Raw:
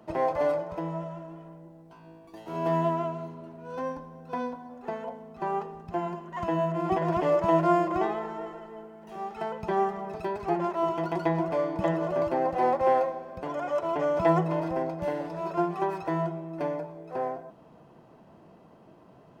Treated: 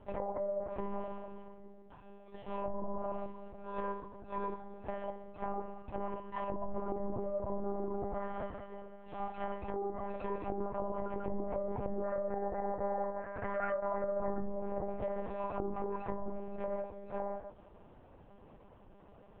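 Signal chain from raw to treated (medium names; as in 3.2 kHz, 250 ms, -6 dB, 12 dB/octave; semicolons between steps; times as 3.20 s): low-pass that closes with the level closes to 580 Hz, closed at -23 dBFS; peak limiter -26 dBFS, peak gain reduction 11.5 dB; flange 1.3 Hz, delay 2.4 ms, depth 9 ms, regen -51%; 12.04–14.47 s: resonant low-pass 1.8 kHz, resonance Q 5.1; monotone LPC vocoder at 8 kHz 200 Hz; trim +1 dB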